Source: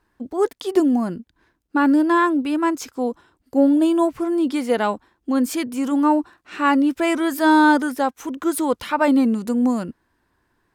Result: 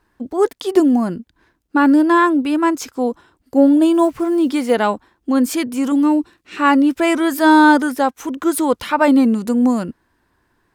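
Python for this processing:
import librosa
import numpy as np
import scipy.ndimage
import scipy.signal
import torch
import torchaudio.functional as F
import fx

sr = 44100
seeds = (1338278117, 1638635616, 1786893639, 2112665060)

y = fx.block_float(x, sr, bits=7, at=(3.94, 4.75))
y = fx.band_shelf(y, sr, hz=1000.0, db=-9.0, octaves=1.7, at=(5.92, 6.57))
y = y * 10.0 ** (4.0 / 20.0)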